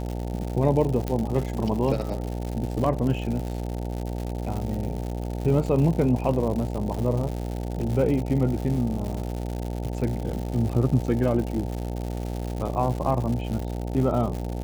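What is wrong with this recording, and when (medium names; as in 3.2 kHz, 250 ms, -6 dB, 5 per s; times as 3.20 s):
buzz 60 Hz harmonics 15 -30 dBFS
crackle 180 per s -30 dBFS
1.08 s: pop -14 dBFS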